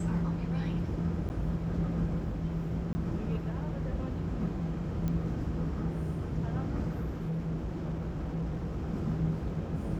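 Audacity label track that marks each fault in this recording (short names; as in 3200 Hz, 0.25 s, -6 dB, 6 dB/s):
1.290000	1.300000	gap 9.3 ms
2.930000	2.950000	gap 20 ms
5.080000	5.080000	pop -22 dBFS
6.950000	8.870000	clipped -30 dBFS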